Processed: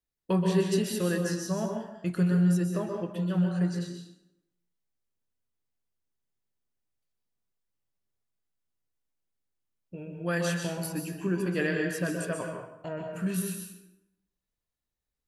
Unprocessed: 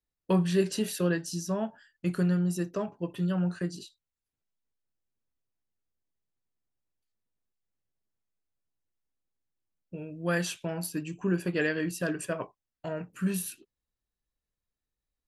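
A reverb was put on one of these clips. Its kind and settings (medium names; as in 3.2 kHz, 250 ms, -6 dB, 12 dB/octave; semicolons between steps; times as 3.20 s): plate-style reverb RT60 0.84 s, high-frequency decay 0.7×, pre-delay 115 ms, DRR 2.5 dB; trim -1.5 dB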